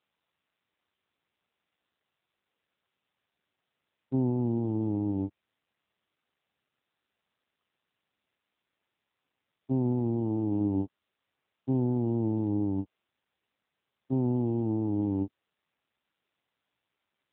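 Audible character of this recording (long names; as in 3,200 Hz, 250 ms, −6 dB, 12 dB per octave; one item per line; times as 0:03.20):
a buzz of ramps at a fixed pitch in blocks of 8 samples
AMR narrowband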